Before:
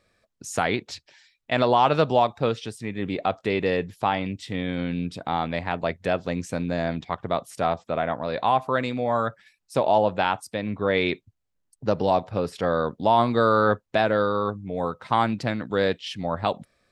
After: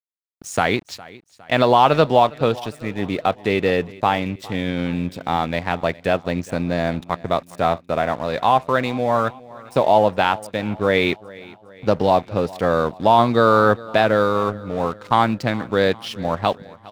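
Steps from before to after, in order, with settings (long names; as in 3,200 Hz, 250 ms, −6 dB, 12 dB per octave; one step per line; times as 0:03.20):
dead-zone distortion −43.5 dBFS
on a send: repeating echo 409 ms, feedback 50%, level −21 dB
on the sum: level +5.5 dB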